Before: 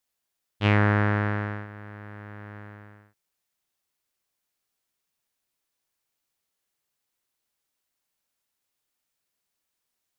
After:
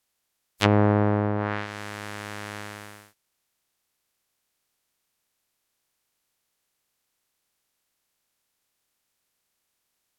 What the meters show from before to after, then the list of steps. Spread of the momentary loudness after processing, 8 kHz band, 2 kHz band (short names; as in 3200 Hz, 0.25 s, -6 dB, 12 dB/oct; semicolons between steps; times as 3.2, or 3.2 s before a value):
17 LU, n/a, -3.5 dB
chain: spectral contrast lowered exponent 0.41; treble ducked by the level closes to 630 Hz, closed at -21 dBFS; gain +5.5 dB